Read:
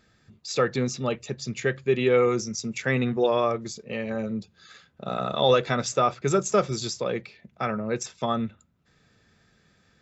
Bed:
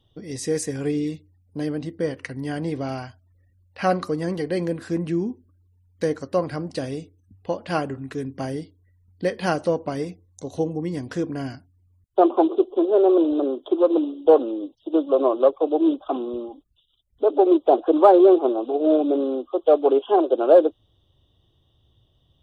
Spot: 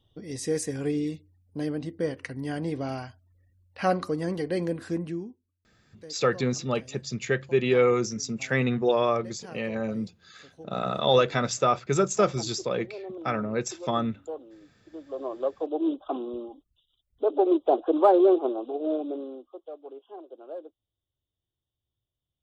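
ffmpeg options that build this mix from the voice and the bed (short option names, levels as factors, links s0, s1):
-filter_complex "[0:a]adelay=5650,volume=0.944[s0];[1:a]volume=4.73,afade=t=out:st=4.88:d=0.5:silence=0.112202,afade=t=in:st=14.96:d=1.15:silence=0.141254,afade=t=out:st=18.3:d=1.41:silence=0.1[s1];[s0][s1]amix=inputs=2:normalize=0"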